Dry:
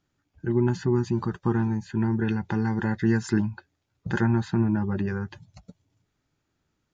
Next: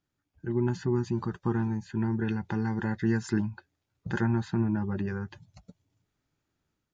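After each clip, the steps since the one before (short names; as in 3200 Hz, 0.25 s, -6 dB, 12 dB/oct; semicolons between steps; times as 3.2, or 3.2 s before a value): AGC gain up to 4 dB; gain -8 dB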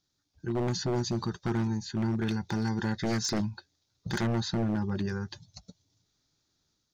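band shelf 4800 Hz +14.5 dB 1.1 oct; wavefolder -22 dBFS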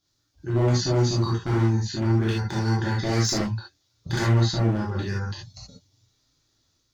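non-linear reverb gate 0.1 s flat, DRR -5.5 dB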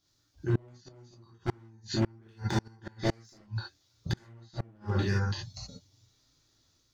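flipped gate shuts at -16 dBFS, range -33 dB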